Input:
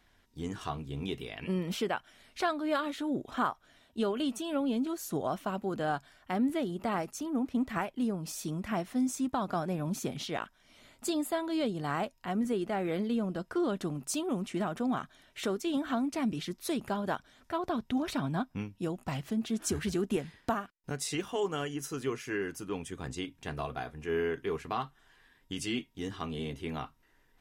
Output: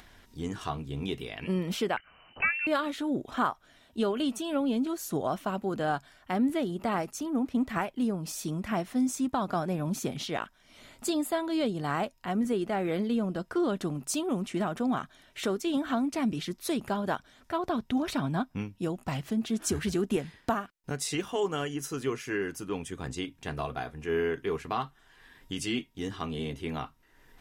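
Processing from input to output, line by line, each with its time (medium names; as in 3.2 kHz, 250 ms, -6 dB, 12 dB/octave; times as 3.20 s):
1.97–2.67 s: frequency inversion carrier 3 kHz
whole clip: upward compressor, threshold -48 dBFS; trim +2.5 dB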